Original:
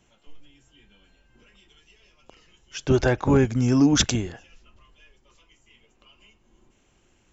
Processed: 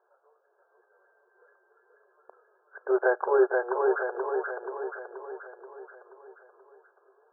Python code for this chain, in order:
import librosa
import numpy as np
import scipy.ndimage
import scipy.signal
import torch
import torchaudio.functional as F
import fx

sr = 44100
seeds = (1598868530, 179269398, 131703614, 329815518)

y = fx.brickwall_bandpass(x, sr, low_hz=370.0, high_hz=1700.0)
y = fx.echo_feedback(y, sr, ms=480, feedback_pct=54, wet_db=-3.0)